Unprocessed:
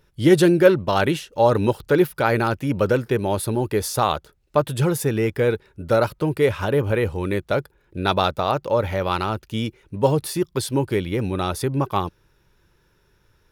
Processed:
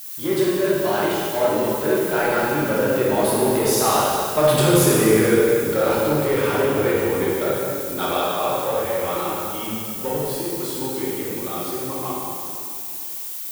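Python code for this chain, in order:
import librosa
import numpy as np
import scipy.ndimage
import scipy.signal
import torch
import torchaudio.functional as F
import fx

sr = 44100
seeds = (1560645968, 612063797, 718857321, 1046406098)

p1 = fx.doppler_pass(x, sr, speed_mps=15, closest_m=7.4, pass_at_s=4.69)
p2 = scipy.signal.sosfilt(scipy.signal.butter(2, 190.0, 'highpass', fs=sr, output='sos'), p1)
p3 = fx.hum_notches(p2, sr, base_hz=60, count=4)
p4 = fx.over_compress(p3, sr, threshold_db=-32.0, ratio=-1.0)
p5 = p3 + F.gain(torch.from_numpy(p4), -1.0).numpy()
p6 = fx.dmg_noise_colour(p5, sr, seeds[0], colour='violet', level_db=-44.0)
p7 = fx.power_curve(p6, sr, exponent=0.7)
p8 = fx.rev_plate(p7, sr, seeds[1], rt60_s=2.5, hf_ratio=0.85, predelay_ms=0, drr_db=-7.5)
y = F.gain(torch.from_numpy(p8), -5.5).numpy()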